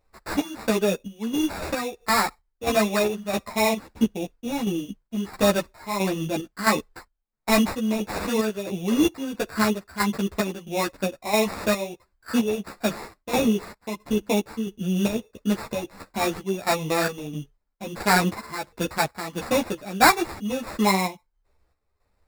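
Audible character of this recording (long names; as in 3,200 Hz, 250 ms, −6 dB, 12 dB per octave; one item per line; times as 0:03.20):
aliases and images of a low sample rate 3,100 Hz, jitter 0%
chopped level 1.5 Hz, depth 60%, duty 60%
a shimmering, thickened sound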